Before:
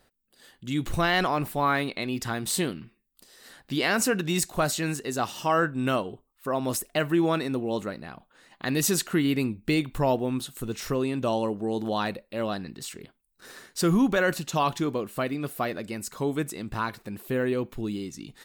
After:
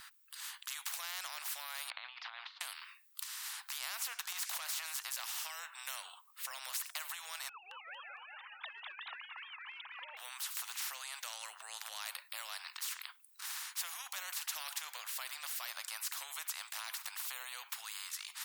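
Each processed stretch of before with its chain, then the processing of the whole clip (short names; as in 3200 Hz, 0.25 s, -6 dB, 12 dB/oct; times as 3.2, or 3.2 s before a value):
1.9–2.61 low shelf 200 Hz -9 dB + negative-ratio compressor -37 dBFS, ratio -0.5 + Gaussian blur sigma 3.3 samples
4.32–4.85 compressor 10:1, threshold -35 dBFS + overdrive pedal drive 20 dB, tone 4900 Hz, clips at -17 dBFS
7.49–10.17 sine-wave speech + warbling echo 0.227 s, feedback 31%, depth 164 cents, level -4 dB
whole clip: compressor, threshold -27 dBFS; steep high-pass 1000 Hz 48 dB/oct; spectral compressor 4:1; gain -1 dB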